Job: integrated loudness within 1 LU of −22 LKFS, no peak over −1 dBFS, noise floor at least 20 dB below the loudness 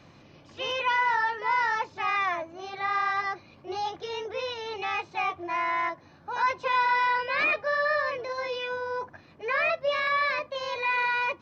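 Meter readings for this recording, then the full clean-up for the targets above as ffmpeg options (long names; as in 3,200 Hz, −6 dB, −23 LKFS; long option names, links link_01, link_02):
integrated loudness −27.5 LKFS; sample peak −16.0 dBFS; target loudness −22.0 LKFS
→ -af "volume=5.5dB"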